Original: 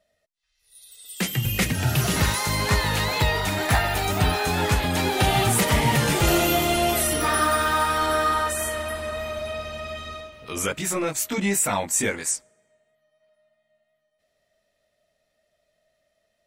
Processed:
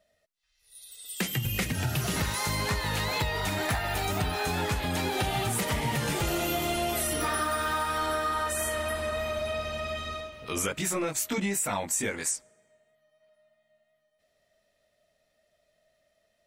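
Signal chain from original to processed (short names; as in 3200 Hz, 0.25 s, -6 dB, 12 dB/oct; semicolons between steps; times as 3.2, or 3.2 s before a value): compressor, threshold -26 dBFS, peak gain reduction 10.5 dB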